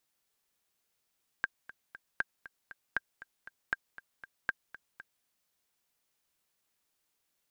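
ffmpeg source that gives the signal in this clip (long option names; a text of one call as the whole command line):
ffmpeg -f lavfi -i "aevalsrc='pow(10,(-16-17*gte(mod(t,3*60/236),60/236))/20)*sin(2*PI*1590*mod(t,60/236))*exp(-6.91*mod(t,60/236)/0.03)':duration=3.81:sample_rate=44100" out.wav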